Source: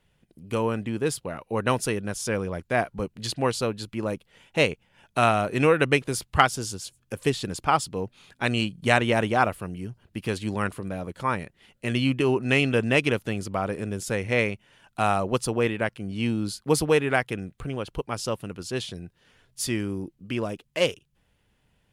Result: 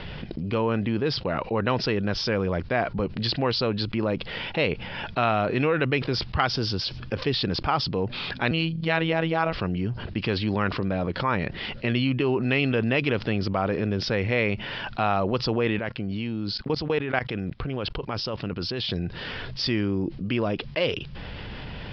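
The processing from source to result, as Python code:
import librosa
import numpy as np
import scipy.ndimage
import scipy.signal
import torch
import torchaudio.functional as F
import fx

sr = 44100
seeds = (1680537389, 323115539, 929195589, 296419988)

y = fx.robotise(x, sr, hz=163.0, at=(8.51, 9.53))
y = fx.level_steps(y, sr, step_db=22, at=(15.79, 18.9))
y = scipy.signal.sosfilt(scipy.signal.butter(16, 5200.0, 'lowpass', fs=sr, output='sos'), y)
y = fx.env_flatten(y, sr, amount_pct=70)
y = y * librosa.db_to_amplitude(-6.5)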